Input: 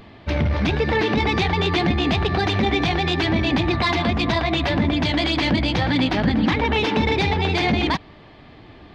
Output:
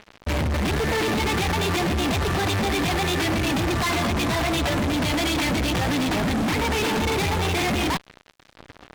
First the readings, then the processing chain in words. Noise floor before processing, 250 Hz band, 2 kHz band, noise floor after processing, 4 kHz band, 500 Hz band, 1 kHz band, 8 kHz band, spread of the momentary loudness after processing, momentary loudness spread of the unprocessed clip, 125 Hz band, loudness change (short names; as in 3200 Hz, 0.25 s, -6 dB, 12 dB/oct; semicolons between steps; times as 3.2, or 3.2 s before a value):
-45 dBFS, -3.5 dB, -2.5 dB, -55 dBFS, -2.5 dB, -2.5 dB, -2.0 dB, n/a, 1 LU, 1 LU, -3.0 dB, -2.5 dB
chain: high shelf 6500 Hz -10 dB; fuzz box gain 35 dB, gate -39 dBFS; gain -8.5 dB